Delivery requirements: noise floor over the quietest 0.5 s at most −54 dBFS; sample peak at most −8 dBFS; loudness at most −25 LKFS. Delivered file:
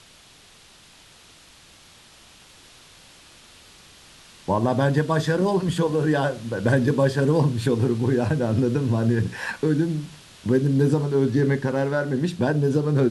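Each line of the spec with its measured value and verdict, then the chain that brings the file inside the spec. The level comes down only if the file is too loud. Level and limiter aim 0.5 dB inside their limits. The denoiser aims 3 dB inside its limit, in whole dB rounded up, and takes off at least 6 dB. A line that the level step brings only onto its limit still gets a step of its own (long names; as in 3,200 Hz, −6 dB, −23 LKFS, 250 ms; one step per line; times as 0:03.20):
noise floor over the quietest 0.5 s −51 dBFS: out of spec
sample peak −7.0 dBFS: out of spec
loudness −22.5 LKFS: out of spec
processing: broadband denoise 6 dB, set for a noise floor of −51 dBFS
level −3 dB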